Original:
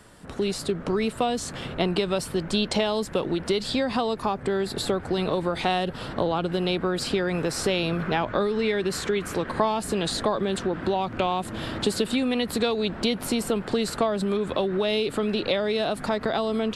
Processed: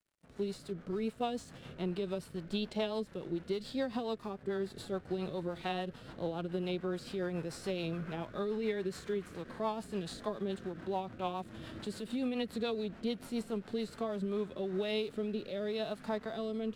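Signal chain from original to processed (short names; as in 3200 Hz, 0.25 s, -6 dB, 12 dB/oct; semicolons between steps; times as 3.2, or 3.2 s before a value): crossover distortion -45.5 dBFS; harmonic-percussive split percussive -12 dB; rotary speaker horn 7 Hz, later 0.85 Hz, at 13.83; gain -7.5 dB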